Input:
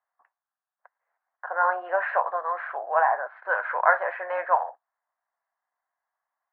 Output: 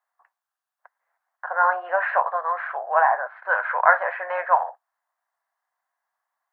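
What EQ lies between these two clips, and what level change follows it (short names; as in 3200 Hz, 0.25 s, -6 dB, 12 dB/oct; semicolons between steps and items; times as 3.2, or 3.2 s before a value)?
HPF 560 Hz 12 dB/oct; +4.0 dB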